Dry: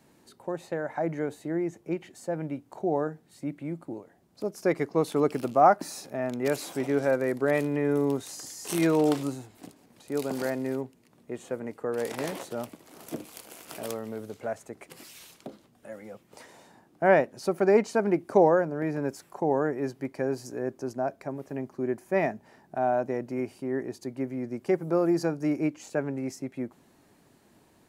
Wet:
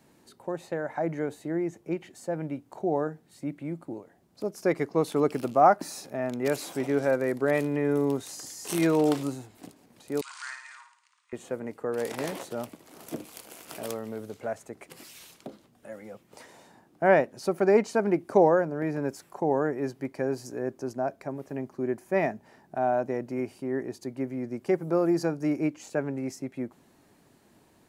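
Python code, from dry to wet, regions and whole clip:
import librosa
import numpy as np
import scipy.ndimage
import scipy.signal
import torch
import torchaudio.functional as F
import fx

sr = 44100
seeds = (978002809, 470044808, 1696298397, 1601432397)

y = fx.chain(x, sr, fx.cheby1_bandpass(low_hz=1000.0, high_hz=9000.0, order=5),
    fx.room_flutter(wall_m=9.4, rt60_s=0.57), at=(10.21, 11.33))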